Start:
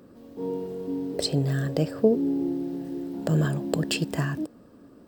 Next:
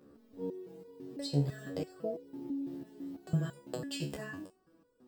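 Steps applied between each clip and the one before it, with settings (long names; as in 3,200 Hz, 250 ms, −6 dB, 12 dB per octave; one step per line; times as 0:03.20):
step-sequenced resonator 6 Hz 72–490 Hz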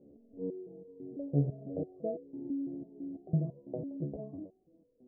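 elliptic low-pass filter 680 Hz, stop band 60 dB
level +1.5 dB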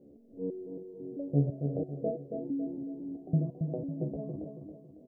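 repeating echo 276 ms, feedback 41%, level −6 dB
level +2 dB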